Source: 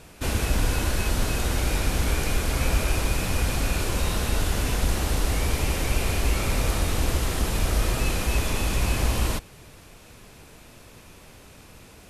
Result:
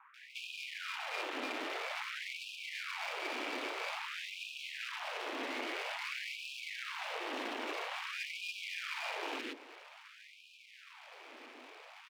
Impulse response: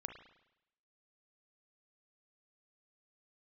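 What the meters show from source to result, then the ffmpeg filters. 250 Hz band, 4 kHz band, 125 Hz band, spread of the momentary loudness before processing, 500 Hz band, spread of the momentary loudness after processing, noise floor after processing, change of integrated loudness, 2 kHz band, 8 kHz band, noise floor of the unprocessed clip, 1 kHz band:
−18.0 dB, −9.5 dB, below −40 dB, 1 LU, −13.5 dB, 15 LU, −58 dBFS, −14.0 dB, −7.0 dB, −22.5 dB, −49 dBFS, −9.5 dB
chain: -filter_complex "[0:a]highpass=frequency=220:width_type=q:width=0.5412,highpass=frequency=220:width_type=q:width=1.307,lowpass=frequency=3200:width_type=q:width=0.5176,lowpass=frequency=3200:width_type=q:width=0.7071,lowpass=frequency=3200:width_type=q:width=1.932,afreqshift=-150,acompressor=threshold=-35dB:ratio=6,aeval=exprs='max(val(0),0)':channel_layout=same,acrossover=split=440|1500[link_01][link_02][link_03];[link_03]adelay=140[link_04];[link_01]adelay=170[link_05];[link_05][link_02][link_04]amix=inputs=3:normalize=0,afftfilt=real='re*gte(b*sr/1024,220*pow(2400/220,0.5+0.5*sin(2*PI*0.5*pts/sr)))':imag='im*gte(b*sr/1024,220*pow(2400/220,0.5+0.5*sin(2*PI*0.5*pts/sr)))':win_size=1024:overlap=0.75,volume=6.5dB"

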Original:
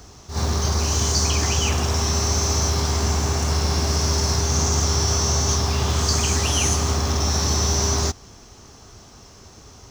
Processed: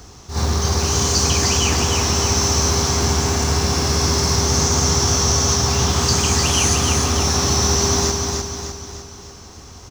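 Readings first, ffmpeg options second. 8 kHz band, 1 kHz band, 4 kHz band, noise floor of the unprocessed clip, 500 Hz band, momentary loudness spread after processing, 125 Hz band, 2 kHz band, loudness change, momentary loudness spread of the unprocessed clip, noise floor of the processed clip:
+5.0 dB, +4.5 dB, +5.0 dB, −46 dBFS, +5.0 dB, 9 LU, +1.5 dB, +5.0 dB, +3.5 dB, 3 LU, −40 dBFS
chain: -filter_complex "[0:a]bandreject=frequency=620:width=12,asplit=2[link_01][link_02];[link_02]aecho=0:1:302|604|906|1208|1510|1812:0.631|0.309|0.151|0.0742|0.0364|0.0178[link_03];[link_01][link_03]amix=inputs=2:normalize=0,volume=3dB"

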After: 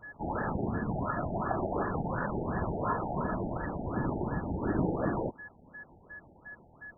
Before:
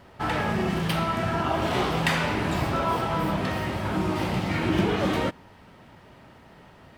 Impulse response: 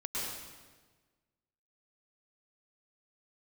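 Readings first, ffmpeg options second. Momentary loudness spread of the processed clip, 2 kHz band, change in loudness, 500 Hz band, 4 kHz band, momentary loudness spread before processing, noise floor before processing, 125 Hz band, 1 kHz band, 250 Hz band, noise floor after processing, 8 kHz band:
18 LU, −10.5 dB, −7.0 dB, −6.0 dB, below −40 dB, 4 LU, −52 dBFS, −6.5 dB, −7.0 dB, −6.0 dB, −58 dBFS, below −35 dB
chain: -af "afftfilt=real='hypot(re,im)*cos(2*PI*random(0))':imag='hypot(re,im)*sin(2*PI*random(1))':win_size=512:overlap=0.75,aeval=exprs='val(0)+0.00794*sin(2*PI*1700*n/s)':channel_layout=same,afftfilt=real='re*lt(b*sr/1024,870*pow(1900/870,0.5+0.5*sin(2*PI*2.8*pts/sr)))':imag='im*lt(b*sr/1024,870*pow(1900/870,0.5+0.5*sin(2*PI*2.8*pts/sr)))':win_size=1024:overlap=0.75"

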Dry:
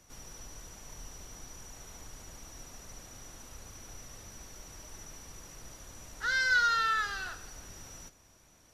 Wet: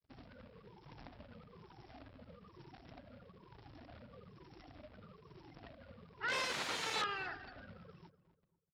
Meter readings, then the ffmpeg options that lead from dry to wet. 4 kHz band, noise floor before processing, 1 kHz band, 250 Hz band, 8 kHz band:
−4.0 dB, −62 dBFS, −10.0 dB, +1.0 dB, −10.0 dB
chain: -filter_complex "[0:a]afftfilt=real='re*pow(10,13/40*sin(2*PI*(0.73*log(max(b,1)*sr/1024/100)/log(2)-(-1.1)*(pts-256)/sr)))':imag='im*pow(10,13/40*sin(2*PI*(0.73*log(max(b,1)*sr/1024/100)/log(2)-(-1.1)*(pts-256)/sr)))':win_size=1024:overlap=0.75,afftfilt=real='re*gte(hypot(re,im),0.00891)':imag='im*gte(hypot(re,im),0.00891)':win_size=1024:overlap=0.75,equalizer=frequency=950:width=3.7:gain=-3.5,aresample=11025,acrusher=bits=3:mode=log:mix=0:aa=0.000001,aresample=44100,aeval=exprs='(mod(23.7*val(0)+1,2)-1)/23.7':channel_layout=same,highpass=120,lowpass=3500,asplit=2[link_01][link_02];[link_02]adelay=246,lowpass=frequency=1300:poles=1,volume=-14.5dB,asplit=2[link_03][link_04];[link_04]adelay=246,lowpass=frequency=1300:poles=1,volume=0.36,asplit=2[link_05][link_06];[link_06]adelay=246,lowpass=frequency=1300:poles=1,volume=0.36[link_07];[link_03][link_05][link_07]amix=inputs=3:normalize=0[link_08];[link_01][link_08]amix=inputs=2:normalize=0"

